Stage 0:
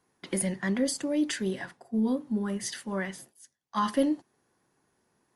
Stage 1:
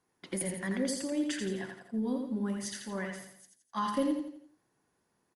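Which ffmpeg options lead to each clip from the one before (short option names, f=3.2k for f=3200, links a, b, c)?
-af "aecho=1:1:84|168|252|336|420:0.562|0.242|0.104|0.0447|0.0192,volume=-5.5dB"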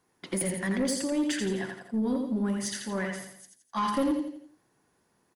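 -af "asoftclip=type=tanh:threshold=-26.5dB,volume=6dB"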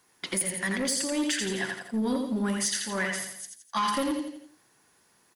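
-af "tiltshelf=f=1.1k:g=-6,alimiter=limit=-23.5dB:level=0:latency=1:release=417,volume=5.5dB"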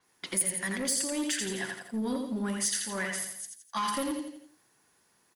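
-af "adynamicequalizer=threshold=0.00708:dfrequency=7200:dqfactor=0.7:tfrequency=7200:tqfactor=0.7:attack=5:release=100:ratio=0.375:range=3.5:mode=boostabove:tftype=highshelf,volume=-4dB"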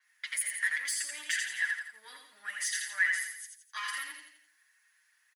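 -af "highpass=f=1.8k:t=q:w=4.6,aecho=1:1:6.5:0.79,volume=-7dB"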